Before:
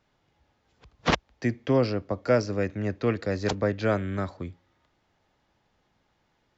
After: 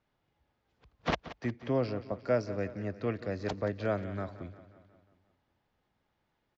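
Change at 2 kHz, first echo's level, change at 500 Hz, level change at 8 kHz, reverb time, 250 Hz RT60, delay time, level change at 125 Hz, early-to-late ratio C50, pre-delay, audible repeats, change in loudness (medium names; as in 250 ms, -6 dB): -8.0 dB, -15.0 dB, -6.5 dB, no reading, no reverb, no reverb, 178 ms, -7.5 dB, no reverb, no reverb, 5, -7.0 dB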